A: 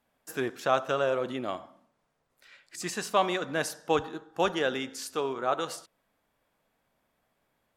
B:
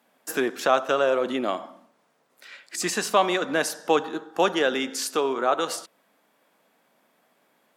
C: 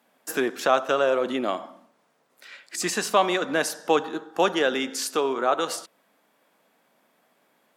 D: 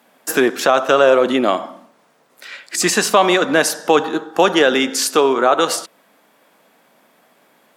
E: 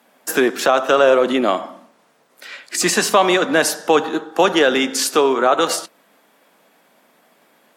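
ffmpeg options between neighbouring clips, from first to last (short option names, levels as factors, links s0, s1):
-filter_complex "[0:a]highpass=f=190:w=0.5412,highpass=f=190:w=1.3066,asplit=2[s0][s1];[s1]acompressor=threshold=0.0178:ratio=6,volume=1.41[s2];[s0][s2]amix=inputs=2:normalize=0,volume=1.33"
-af anull
-af "alimiter=level_in=3.76:limit=0.891:release=50:level=0:latency=1,volume=0.891"
-af "highpass=f=150:w=0.5412,highpass=f=150:w=1.3066,volume=0.891" -ar 44100 -c:a aac -b:a 64k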